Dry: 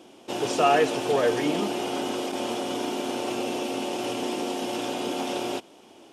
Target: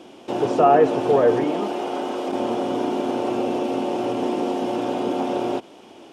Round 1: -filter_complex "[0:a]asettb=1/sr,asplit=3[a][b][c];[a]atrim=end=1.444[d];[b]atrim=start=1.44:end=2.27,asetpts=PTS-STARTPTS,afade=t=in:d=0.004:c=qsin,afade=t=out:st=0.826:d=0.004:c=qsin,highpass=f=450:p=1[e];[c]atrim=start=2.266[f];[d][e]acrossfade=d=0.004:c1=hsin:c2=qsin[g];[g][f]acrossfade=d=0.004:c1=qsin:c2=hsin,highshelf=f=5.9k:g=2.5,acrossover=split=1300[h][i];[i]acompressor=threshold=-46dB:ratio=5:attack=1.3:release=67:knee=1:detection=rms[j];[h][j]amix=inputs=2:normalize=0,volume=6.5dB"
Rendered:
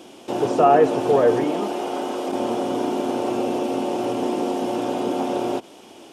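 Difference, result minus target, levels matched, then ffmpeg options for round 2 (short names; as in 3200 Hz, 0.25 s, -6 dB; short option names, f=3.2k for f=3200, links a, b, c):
8000 Hz band +4.5 dB
-filter_complex "[0:a]asettb=1/sr,asplit=3[a][b][c];[a]atrim=end=1.444[d];[b]atrim=start=1.44:end=2.27,asetpts=PTS-STARTPTS,afade=t=in:d=0.004:c=qsin,afade=t=out:st=0.826:d=0.004:c=qsin,highpass=f=450:p=1[e];[c]atrim=start=2.266[f];[d][e]acrossfade=d=0.004:c1=hsin:c2=qsin[g];[g][f]acrossfade=d=0.004:c1=qsin:c2=hsin,highshelf=f=5.9k:g=-9.5,acrossover=split=1300[h][i];[i]acompressor=threshold=-46dB:ratio=5:attack=1.3:release=67:knee=1:detection=rms[j];[h][j]amix=inputs=2:normalize=0,volume=6.5dB"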